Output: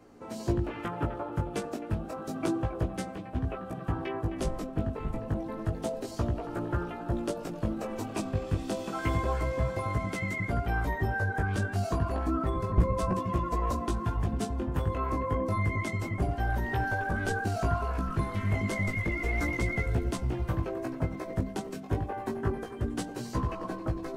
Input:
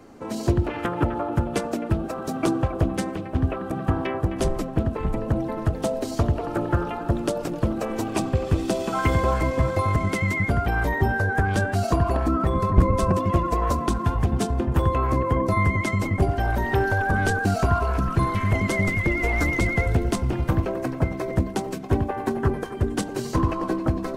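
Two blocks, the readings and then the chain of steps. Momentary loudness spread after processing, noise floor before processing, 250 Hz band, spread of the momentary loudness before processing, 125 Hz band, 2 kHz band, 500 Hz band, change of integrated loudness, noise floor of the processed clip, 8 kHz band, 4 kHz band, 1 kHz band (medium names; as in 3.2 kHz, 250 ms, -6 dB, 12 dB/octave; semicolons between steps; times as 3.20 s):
5 LU, -33 dBFS, -8.0 dB, 5 LU, -7.5 dB, -8.0 dB, -8.0 dB, -8.0 dB, -41 dBFS, -8.0 dB, -8.0 dB, -8.0 dB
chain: chorus 0.3 Hz, delay 16.5 ms, depth 3.2 ms; trim -5 dB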